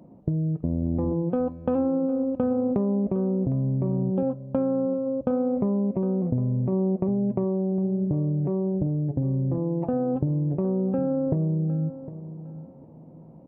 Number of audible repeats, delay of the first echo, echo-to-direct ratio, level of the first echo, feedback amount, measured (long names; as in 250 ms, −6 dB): 2, 758 ms, −13.5 dB, −14.0 dB, 24%